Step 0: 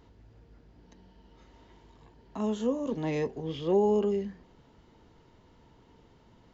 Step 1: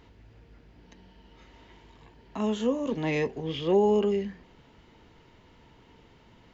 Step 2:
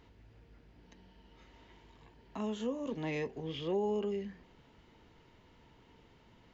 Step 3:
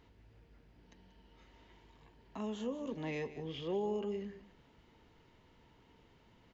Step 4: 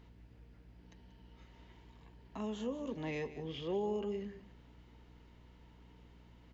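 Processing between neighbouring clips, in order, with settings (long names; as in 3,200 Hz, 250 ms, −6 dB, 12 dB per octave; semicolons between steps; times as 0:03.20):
parametric band 2,400 Hz +7.5 dB 1.2 octaves; level +2 dB
downward compressor 1.5 to 1, threshold −33 dBFS, peak gain reduction 5.5 dB; level −5.5 dB
single-tap delay 185 ms −14.5 dB; level −3 dB
mains hum 60 Hz, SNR 16 dB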